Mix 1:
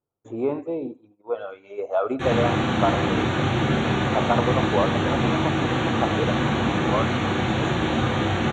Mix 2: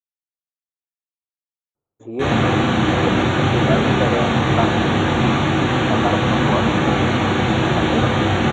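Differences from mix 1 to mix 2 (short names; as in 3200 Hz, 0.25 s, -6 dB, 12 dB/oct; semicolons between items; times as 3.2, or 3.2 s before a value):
speech: entry +1.75 s; background +5.5 dB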